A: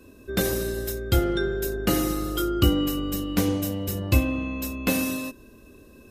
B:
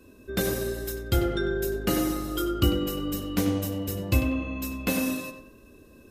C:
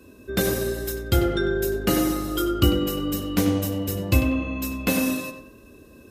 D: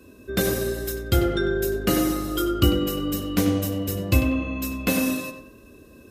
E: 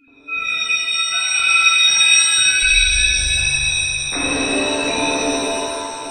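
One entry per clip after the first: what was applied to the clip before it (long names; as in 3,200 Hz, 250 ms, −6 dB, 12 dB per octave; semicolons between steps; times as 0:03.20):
tape delay 95 ms, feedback 39%, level −6 dB, low-pass 2,400 Hz; level −3 dB
high-pass filter 41 Hz; level +4 dB
notch filter 870 Hz, Q 12
three sine waves on the formant tracks; voice inversion scrambler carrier 2,900 Hz; reverb with rising layers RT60 2.6 s, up +7 semitones, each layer −2 dB, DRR −7.5 dB; level −4.5 dB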